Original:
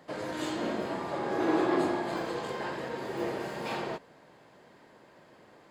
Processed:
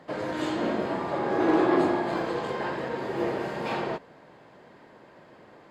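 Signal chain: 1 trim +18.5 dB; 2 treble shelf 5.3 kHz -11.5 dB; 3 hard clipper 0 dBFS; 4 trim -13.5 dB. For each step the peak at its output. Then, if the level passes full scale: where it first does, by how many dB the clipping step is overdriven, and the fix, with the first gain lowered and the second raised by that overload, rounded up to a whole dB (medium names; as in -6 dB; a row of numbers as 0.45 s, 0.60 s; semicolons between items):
+3.5 dBFS, +3.0 dBFS, 0.0 dBFS, -13.5 dBFS; step 1, 3.0 dB; step 1 +15.5 dB, step 4 -10.5 dB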